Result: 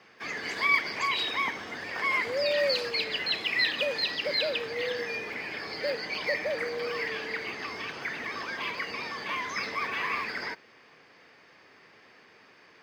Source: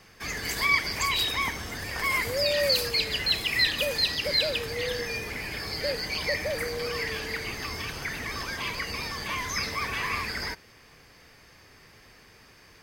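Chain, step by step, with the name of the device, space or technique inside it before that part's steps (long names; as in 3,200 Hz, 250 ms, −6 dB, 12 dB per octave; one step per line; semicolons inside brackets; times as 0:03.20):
early digital voice recorder (band-pass filter 250–3,500 Hz; one scale factor per block 7 bits)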